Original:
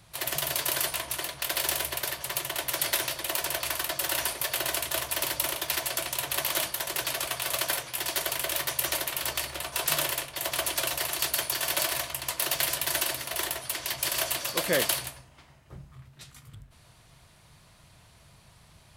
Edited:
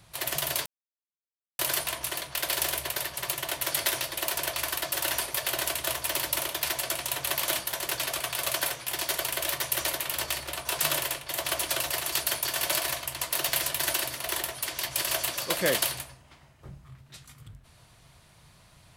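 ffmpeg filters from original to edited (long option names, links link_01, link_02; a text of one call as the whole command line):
ffmpeg -i in.wav -filter_complex "[0:a]asplit=2[link_01][link_02];[link_01]atrim=end=0.66,asetpts=PTS-STARTPTS,afade=type=out:start_time=0.656:duration=0.004:curve=hsin,apad=pad_dur=0.93[link_03];[link_02]atrim=start=0.66,asetpts=PTS-STARTPTS,afade=type=in:duration=0.004:curve=hsin[link_04];[link_03][link_04]concat=n=2:v=0:a=1" out.wav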